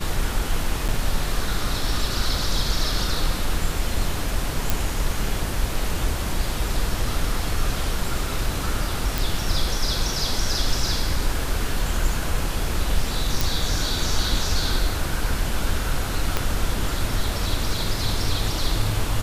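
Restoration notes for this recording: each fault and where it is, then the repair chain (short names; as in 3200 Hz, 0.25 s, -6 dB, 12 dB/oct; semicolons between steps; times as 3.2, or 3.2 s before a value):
0.88–0.89 gap 7.5 ms
4.7 pop
9.18 pop
13.41 pop
16.37 pop -6 dBFS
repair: de-click; interpolate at 0.88, 7.5 ms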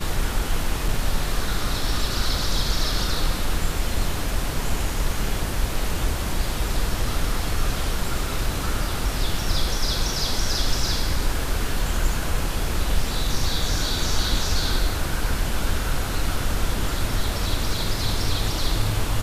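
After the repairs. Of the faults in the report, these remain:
16.37 pop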